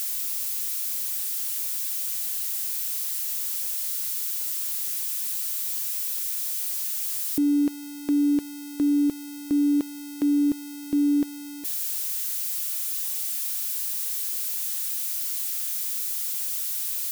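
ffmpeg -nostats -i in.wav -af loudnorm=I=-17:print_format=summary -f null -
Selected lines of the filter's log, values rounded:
Input Integrated:    -25.6 LUFS
Input True Peak:     -16.9 dBTP
Input LRA:             1.0 LU
Input Threshold:     -35.6 LUFS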